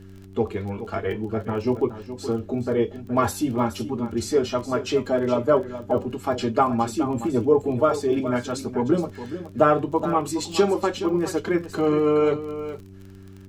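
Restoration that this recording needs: de-click; de-hum 96.2 Hz, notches 4; expander -33 dBFS, range -21 dB; inverse comb 0.42 s -12 dB

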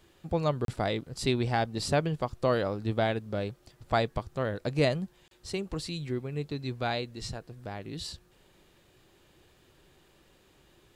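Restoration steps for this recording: de-click; interpolate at 0.65/5.28, 32 ms

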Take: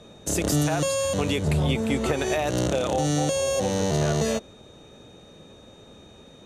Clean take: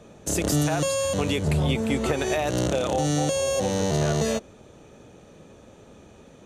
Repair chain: notch 3700 Hz, Q 30

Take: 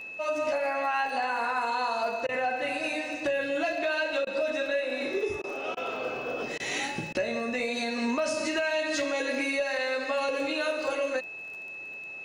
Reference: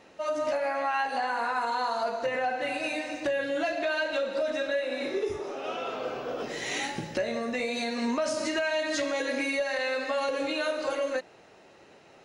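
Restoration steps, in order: de-click; notch 2600 Hz, Q 30; interpolate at 2.27/4.25/5.42/5.75/6.58/7.13, 17 ms

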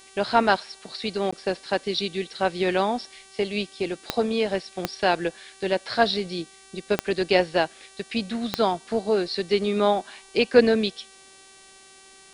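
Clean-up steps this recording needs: de-click; de-hum 386.2 Hz, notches 27; interpolate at 1.31, 15 ms

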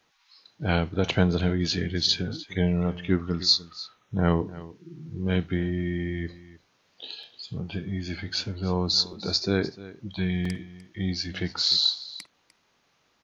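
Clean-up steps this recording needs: interpolate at 7.23/9.13/10.45, 3.5 ms; inverse comb 0.3 s -17.5 dB

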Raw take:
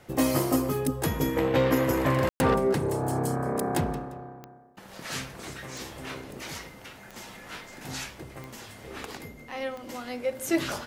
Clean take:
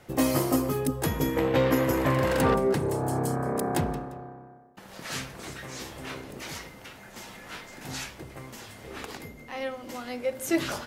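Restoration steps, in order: de-click; room tone fill 2.29–2.4

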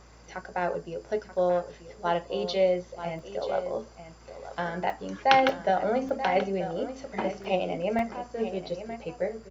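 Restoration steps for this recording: de-hum 57.3 Hz, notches 4; interpolate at 1.36/3.19/4.9/5.49/6.09/7.44/7.99, 1.9 ms; inverse comb 0.933 s -11.5 dB

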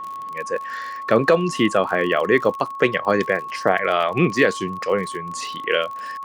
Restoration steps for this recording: de-click; notch 1100 Hz, Q 30

